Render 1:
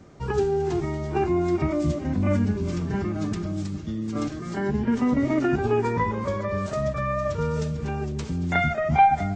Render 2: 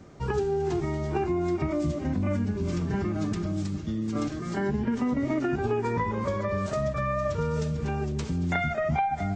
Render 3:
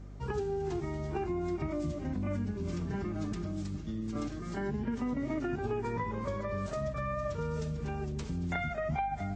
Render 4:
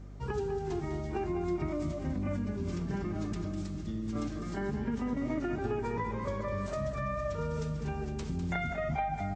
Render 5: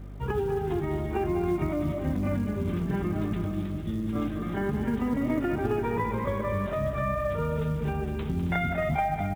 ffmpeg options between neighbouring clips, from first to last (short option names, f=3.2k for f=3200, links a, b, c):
-af "acompressor=threshold=-23dB:ratio=10"
-af "aeval=exprs='val(0)+0.0126*(sin(2*PI*50*n/s)+sin(2*PI*2*50*n/s)/2+sin(2*PI*3*50*n/s)/3+sin(2*PI*4*50*n/s)/4+sin(2*PI*5*50*n/s)/5)':c=same,volume=-7dB"
-af "aecho=1:1:201|465:0.335|0.112"
-af "aresample=8000,aresample=44100,acrusher=bits=8:mode=log:mix=0:aa=0.000001,aecho=1:1:270:0.266,volume=5.5dB"